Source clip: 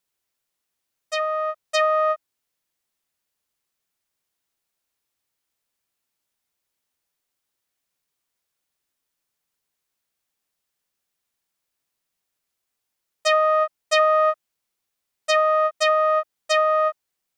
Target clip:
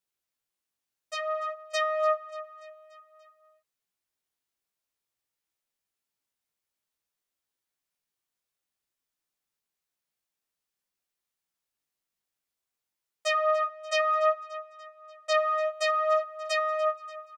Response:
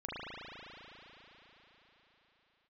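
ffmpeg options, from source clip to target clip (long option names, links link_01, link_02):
-filter_complex "[0:a]asettb=1/sr,asplit=3[link_01][link_02][link_03];[link_01]atrim=end=13.324[link_04];[link_02]atrim=start=13.32:end=15.37,asetpts=PTS-STARTPTS,afade=type=in:duration=0.004:curve=qsin,afade=type=out:start_time=2.046:duration=0.004:curve=qsin,lowpass=7800[link_05];[link_03]atrim=start=15.366[link_06];[link_04][link_05]acrossfade=duration=0.004:curve1=hsin:curve2=qsin[link_07];[link_07][link_06]acrossfade=duration=0.004:curve1=qsin:curve2=hsin,aecho=1:1:291|582|873|1164|1455:0.133|0.076|0.0433|0.0247|0.0141,flanger=delay=15.5:depth=3.5:speed=0.54,volume=-4dB"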